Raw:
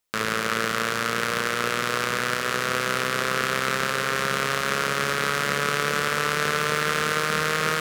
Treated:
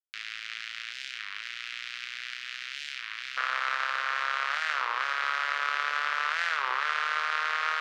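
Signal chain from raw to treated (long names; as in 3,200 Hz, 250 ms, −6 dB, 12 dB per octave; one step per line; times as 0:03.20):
inverse Chebyshev high-pass filter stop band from 490 Hz, stop band 70 dB, from 0:03.36 stop band from 180 Hz
dead-zone distortion −51 dBFS
high-frequency loss of the air 210 metres
wow of a warped record 33 1/3 rpm, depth 250 cents
level −1.5 dB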